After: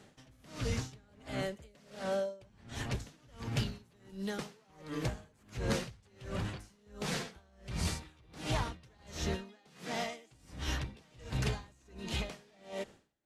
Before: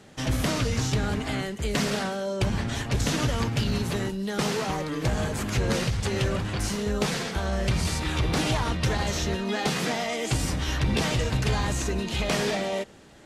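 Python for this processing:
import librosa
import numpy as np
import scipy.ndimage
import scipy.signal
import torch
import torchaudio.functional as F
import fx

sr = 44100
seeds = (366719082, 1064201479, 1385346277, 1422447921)

y = fx.peak_eq(x, sr, hz=570.0, db=9.0, octaves=0.32, at=(1.08, 2.47))
y = y * 10.0 ** (-32 * (0.5 - 0.5 * np.cos(2.0 * np.pi * 1.4 * np.arange(len(y)) / sr)) / 20.0)
y = y * 10.0 ** (-6.0 / 20.0)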